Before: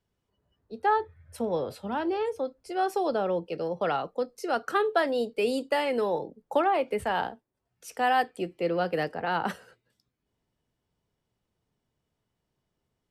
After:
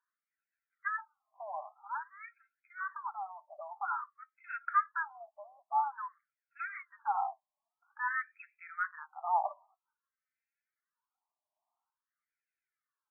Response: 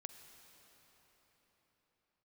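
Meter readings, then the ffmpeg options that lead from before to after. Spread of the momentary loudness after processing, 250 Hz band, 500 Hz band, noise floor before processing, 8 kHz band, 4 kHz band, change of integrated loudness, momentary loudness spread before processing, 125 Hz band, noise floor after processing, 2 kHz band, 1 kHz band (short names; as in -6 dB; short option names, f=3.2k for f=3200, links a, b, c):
19 LU, under -40 dB, -23.5 dB, -82 dBFS, under -30 dB, under -40 dB, -8.5 dB, 8 LU, under -40 dB, under -85 dBFS, -5.0 dB, -6.0 dB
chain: -af "bass=f=250:g=12,treble=f=4k:g=9,aphaser=in_gain=1:out_gain=1:delay=3.9:decay=0.55:speed=0.34:type=sinusoidal,afftfilt=real='re*between(b*sr/1024,830*pow(1900/830,0.5+0.5*sin(2*PI*0.5*pts/sr))/1.41,830*pow(1900/830,0.5+0.5*sin(2*PI*0.5*pts/sr))*1.41)':imag='im*between(b*sr/1024,830*pow(1900/830,0.5+0.5*sin(2*PI*0.5*pts/sr))/1.41,830*pow(1900/830,0.5+0.5*sin(2*PI*0.5*pts/sr))*1.41)':win_size=1024:overlap=0.75,volume=-3.5dB"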